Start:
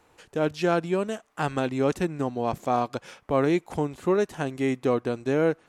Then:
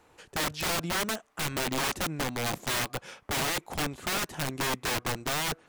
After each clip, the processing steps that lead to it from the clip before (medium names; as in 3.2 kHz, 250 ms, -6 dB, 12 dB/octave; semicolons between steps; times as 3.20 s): integer overflow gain 24.5 dB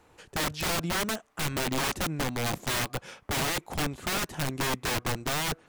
bass shelf 220 Hz +4.5 dB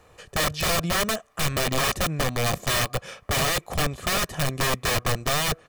comb 1.7 ms, depth 49%; trim +4.5 dB